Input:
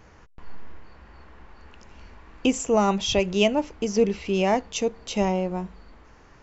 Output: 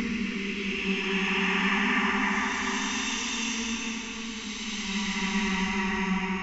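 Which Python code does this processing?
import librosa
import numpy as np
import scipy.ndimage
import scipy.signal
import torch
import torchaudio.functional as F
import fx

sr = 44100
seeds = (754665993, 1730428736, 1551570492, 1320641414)

y = scipy.signal.sosfilt(scipy.signal.cheby1(2, 1.0, [300.0, 1100.0], 'bandstop', fs=sr, output='sos'), x)
y = fx.peak_eq(y, sr, hz=880.0, db=-7.5, octaves=0.5)
y = fx.echo_tape(y, sr, ms=73, feedback_pct=65, wet_db=-3.5, lp_hz=2800.0, drive_db=5.0, wow_cents=36)
y = fx.paulstretch(y, sr, seeds[0], factor=5.1, window_s=0.5, from_s=4.14)
y = fx.graphic_eq(y, sr, hz=(125, 500, 1000, 2000), db=(-11, -5, 7, 7))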